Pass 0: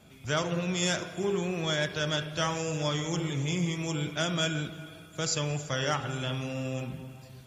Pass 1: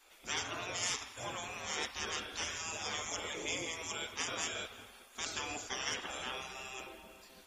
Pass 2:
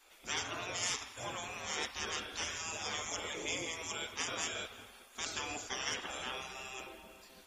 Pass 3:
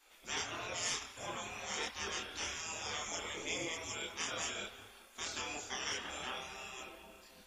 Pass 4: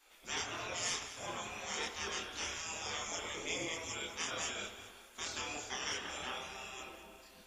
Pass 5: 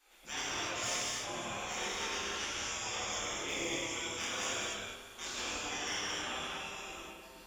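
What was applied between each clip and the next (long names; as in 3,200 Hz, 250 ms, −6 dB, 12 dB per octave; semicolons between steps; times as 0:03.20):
gate on every frequency bin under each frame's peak −15 dB weak
no processing that can be heard
multi-voice chorus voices 4, 1 Hz, delay 27 ms, depth 3 ms; level +1.5 dB
delay that swaps between a low-pass and a high-pass 102 ms, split 1,400 Hz, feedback 64%, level −10 dB
hard clipping −29.5 dBFS, distortion −25 dB; reverb whose tail is shaped and stops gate 320 ms flat, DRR −5 dB; level −3 dB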